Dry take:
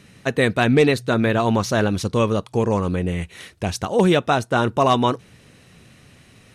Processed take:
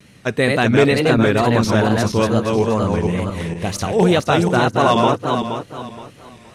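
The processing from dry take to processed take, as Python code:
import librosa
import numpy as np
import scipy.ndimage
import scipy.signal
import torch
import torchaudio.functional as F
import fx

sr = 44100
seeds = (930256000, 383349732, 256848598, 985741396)

y = fx.reverse_delay_fb(x, sr, ms=236, feedback_pct=53, wet_db=-3.0)
y = fx.wow_flutter(y, sr, seeds[0], rate_hz=2.1, depth_cents=110.0)
y = F.gain(torch.from_numpy(y), 1.0).numpy()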